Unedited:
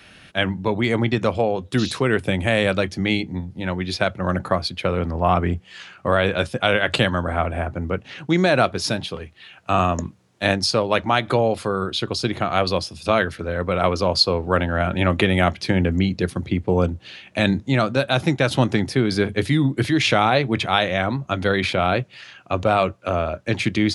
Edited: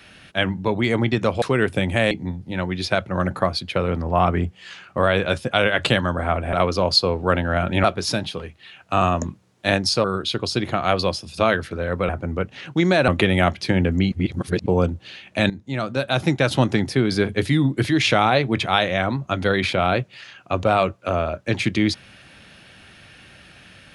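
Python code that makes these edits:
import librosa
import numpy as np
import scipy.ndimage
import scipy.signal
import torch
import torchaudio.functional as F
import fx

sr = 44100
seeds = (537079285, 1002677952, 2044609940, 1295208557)

y = fx.edit(x, sr, fx.cut(start_s=1.42, length_s=0.51),
    fx.cut(start_s=2.62, length_s=0.58),
    fx.swap(start_s=7.62, length_s=0.99, other_s=13.77, other_length_s=1.31),
    fx.cut(start_s=10.81, length_s=0.91),
    fx.reverse_span(start_s=16.12, length_s=0.54),
    fx.fade_in_from(start_s=17.5, length_s=0.78, floor_db=-15.5), tone=tone)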